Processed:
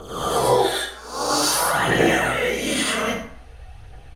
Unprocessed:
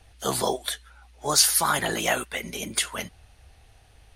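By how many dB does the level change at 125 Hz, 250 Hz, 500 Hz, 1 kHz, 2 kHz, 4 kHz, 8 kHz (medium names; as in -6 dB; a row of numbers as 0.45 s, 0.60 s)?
+8.0 dB, +10.0 dB, +9.5 dB, +7.0 dB, +7.5 dB, +2.5 dB, -1.0 dB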